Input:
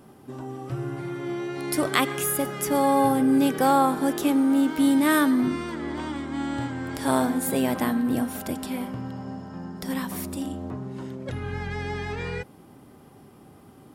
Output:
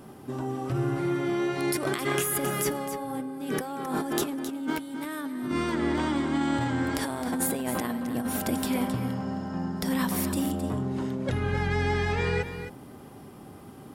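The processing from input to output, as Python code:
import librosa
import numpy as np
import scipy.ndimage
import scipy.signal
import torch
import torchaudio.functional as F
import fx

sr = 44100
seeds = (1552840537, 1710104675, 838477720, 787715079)

y = fx.over_compress(x, sr, threshold_db=-29.0, ratio=-1.0)
y = y + 10.0 ** (-10.0 / 20.0) * np.pad(y, (int(265 * sr / 1000.0), 0))[:len(y)]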